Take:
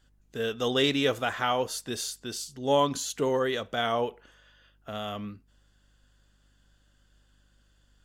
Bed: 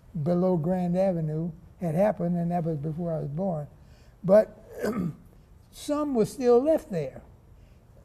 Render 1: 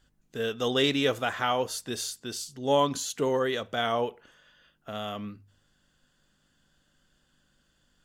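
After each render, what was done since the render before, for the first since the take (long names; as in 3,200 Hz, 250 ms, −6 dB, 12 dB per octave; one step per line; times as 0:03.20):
hum removal 50 Hz, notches 2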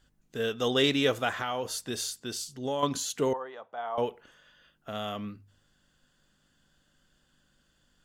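0:01.37–0:02.83: downward compressor, threshold −27 dBFS
0:03.33–0:03.98: resonant band-pass 870 Hz, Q 3.4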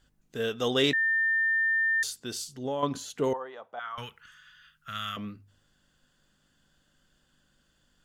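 0:00.93–0:02.03: beep over 1,800 Hz −22.5 dBFS
0:02.63–0:03.24: high-shelf EQ 2,900 Hz −9.5 dB
0:03.79–0:05.17: drawn EQ curve 160 Hz 0 dB, 300 Hz −18 dB, 750 Hz −18 dB, 1,300 Hz +7 dB, 2,400 Hz +4 dB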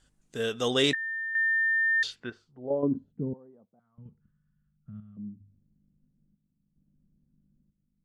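square-wave tremolo 0.74 Hz, depth 60%, duty 70%
low-pass filter sweep 9,000 Hz → 200 Hz, 0:01.71–0:03.07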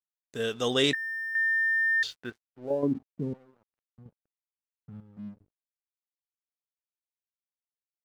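dead-zone distortion −55.5 dBFS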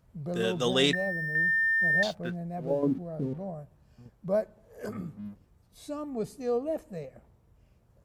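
mix in bed −9 dB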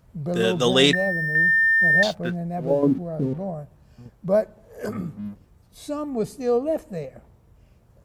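level +7.5 dB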